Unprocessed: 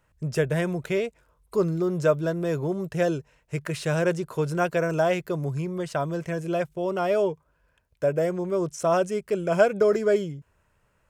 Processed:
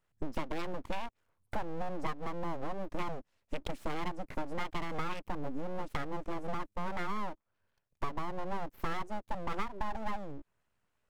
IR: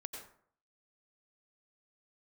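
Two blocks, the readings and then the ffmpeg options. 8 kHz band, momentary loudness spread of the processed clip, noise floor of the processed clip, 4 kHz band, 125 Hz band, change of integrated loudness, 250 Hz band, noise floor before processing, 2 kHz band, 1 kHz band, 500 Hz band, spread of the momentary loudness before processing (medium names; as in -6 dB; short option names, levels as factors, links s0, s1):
-17.0 dB, 5 LU, -81 dBFS, -7.5 dB, -16.0 dB, -14.0 dB, -13.0 dB, -68 dBFS, -11.0 dB, -6.0 dB, -19.0 dB, 8 LU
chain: -af "afwtdn=0.02,acompressor=threshold=0.0141:ratio=6,aeval=exprs='abs(val(0))':c=same,volume=1.88"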